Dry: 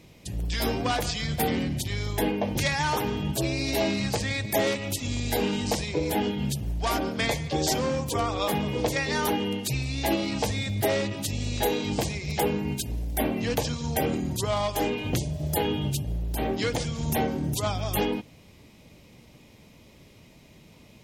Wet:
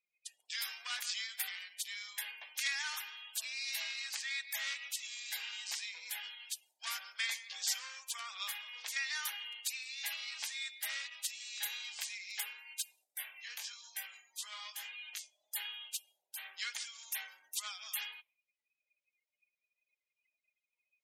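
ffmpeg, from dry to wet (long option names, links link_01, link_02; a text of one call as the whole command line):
ffmpeg -i in.wav -filter_complex "[0:a]asettb=1/sr,asplit=3[link_01][link_02][link_03];[link_01]atrim=end=4.164[link_04];[link_02]atrim=start=4.16:end=5.93,asetpts=PTS-STARTPTS,afade=type=in:duration=0.004:curve=qsin,afade=type=out:start_time=1.766:duration=0.004:curve=qsin,equalizer=frequency=11000:width=1.5:gain=-5.5[link_05];[link_03]atrim=start=5.926[link_06];[link_04][link_05]acrossfade=duration=0.004:curve1=hsin:curve2=qsin[link_07];[link_07][link_06]acrossfade=duration=0.004:curve1=qsin:curve2=hsin,asplit=3[link_08][link_09][link_10];[link_08]afade=type=out:start_time=13.03:duration=0.02[link_11];[link_09]flanger=delay=18:depth=4.6:speed=1,afade=type=in:start_time=13.03:duration=0.02,afade=type=out:start_time=15.54:duration=0.02[link_12];[link_10]afade=type=in:start_time=15.54:duration=0.02[link_13];[link_11][link_12][link_13]amix=inputs=3:normalize=0,afftdn=noise_reduction=33:noise_floor=-49,highpass=frequency=1500:width=0.5412,highpass=frequency=1500:width=1.3066,equalizer=frequency=8100:width_type=o:width=0.77:gain=2,volume=-6.5dB" out.wav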